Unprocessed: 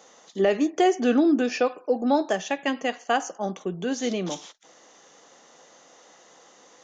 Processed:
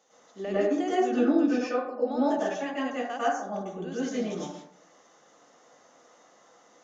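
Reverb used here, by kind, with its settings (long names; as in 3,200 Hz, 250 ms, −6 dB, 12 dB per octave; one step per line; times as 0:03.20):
dense smooth reverb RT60 0.69 s, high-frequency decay 0.35×, pre-delay 90 ms, DRR −9.5 dB
level −14.5 dB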